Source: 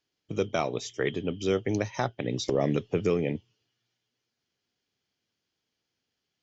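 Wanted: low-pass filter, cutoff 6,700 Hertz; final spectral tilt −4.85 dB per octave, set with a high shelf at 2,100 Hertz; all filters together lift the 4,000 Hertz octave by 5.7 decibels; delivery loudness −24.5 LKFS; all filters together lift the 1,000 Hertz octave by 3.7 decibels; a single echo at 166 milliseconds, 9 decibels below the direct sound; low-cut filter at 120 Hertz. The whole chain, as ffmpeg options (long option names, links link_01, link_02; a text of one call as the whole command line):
ffmpeg -i in.wav -af "highpass=120,lowpass=6700,equalizer=frequency=1000:width_type=o:gain=4.5,highshelf=frequency=2100:gain=3,equalizer=frequency=4000:width_type=o:gain=4.5,aecho=1:1:166:0.355,volume=3.5dB" out.wav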